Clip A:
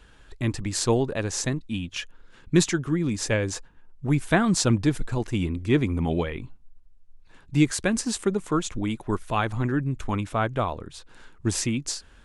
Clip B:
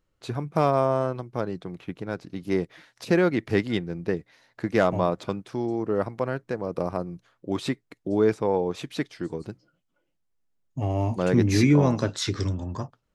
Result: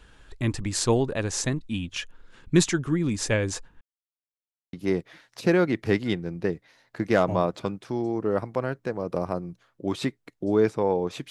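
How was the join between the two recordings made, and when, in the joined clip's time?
clip A
3.81–4.73 s: mute
4.73 s: go over to clip B from 2.37 s

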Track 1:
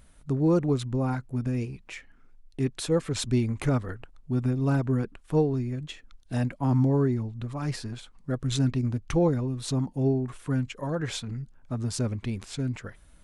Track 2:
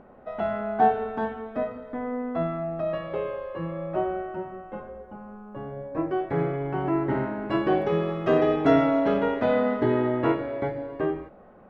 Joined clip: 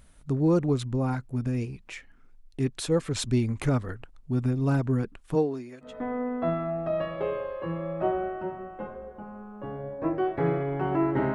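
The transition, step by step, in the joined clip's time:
track 1
5.34–5.94 s: high-pass 190 Hz -> 760 Hz
5.87 s: go over to track 2 from 1.80 s, crossfade 0.14 s

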